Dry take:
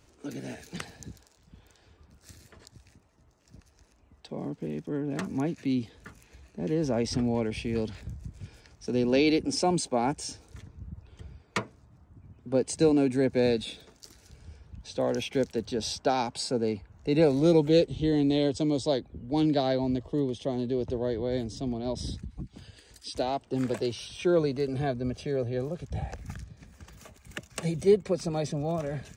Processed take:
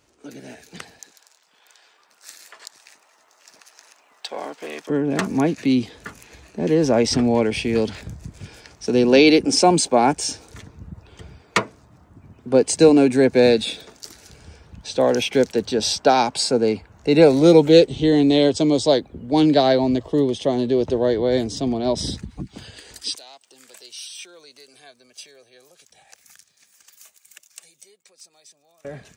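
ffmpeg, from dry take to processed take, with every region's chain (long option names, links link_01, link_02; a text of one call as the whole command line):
ffmpeg -i in.wav -filter_complex "[0:a]asettb=1/sr,asplit=3[link_01][link_02][link_03];[link_01]atrim=end=0.994[link_04];[link_02]atrim=start=0.99:end=4.9,asetpts=PTS-STARTPTS,afade=type=in:duration=0.004:curve=qsin,afade=type=out:start_time=3.906:duration=0.004:curve=qsin,aeval=exprs='if(lt(val(0),0),0.708*val(0),val(0))':channel_layout=same,highpass=840,acontrast=47[link_05];[link_03]atrim=start=4.896[link_06];[link_04][link_05]acrossfade=duration=0.004:curve1=hsin:curve2=qsin[link_07];[link_07][link_06]acrossfade=duration=0.004:curve1=qsin:curve2=hsin,asettb=1/sr,asplit=3[link_08][link_09][link_10];[link_08]atrim=end=23.154[link_11];[link_09]atrim=start=23.15:end=28.85,asetpts=PTS-STARTPTS,afade=type=in:duration=0.004:curve=qsin,afade=type=out:start_time=5.696:duration=0.004:curve=qsin,acompressor=threshold=-42dB:ratio=2:attack=3.2:release=140:knee=1:detection=peak,aderivative[link_12];[link_10]atrim=start=28.846[link_13];[link_11][link_12]acrossfade=duration=0.004:curve1=hsin:curve2=qsin[link_14];[link_14][link_13]acrossfade=duration=0.004:curve1=qsin:curve2=hsin,lowshelf=frequency=150:gain=-12,dynaudnorm=framelen=160:gausssize=31:maxgain=11.5dB,volume=1.5dB" out.wav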